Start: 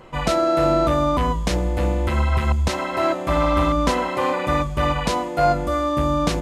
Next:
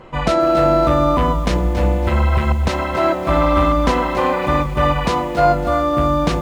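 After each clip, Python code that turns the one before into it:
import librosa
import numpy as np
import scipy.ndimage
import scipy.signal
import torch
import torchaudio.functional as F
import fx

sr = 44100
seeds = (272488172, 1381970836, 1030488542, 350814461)

y = fx.high_shelf(x, sr, hz=5800.0, db=-11.5)
y = fx.echo_crushed(y, sr, ms=278, feedback_pct=35, bits=7, wet_db=-11.0)
y = F.gain(torch.from_numpy(y), 4.0).numpy()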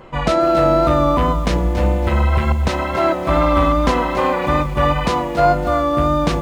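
y = fx.wow_flutter(x, sr, seeds[0], rate_hz=2.1, depth_cents=26.0)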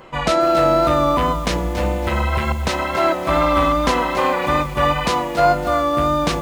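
y = fx.tilt_eq(x, sr, slope=1.5)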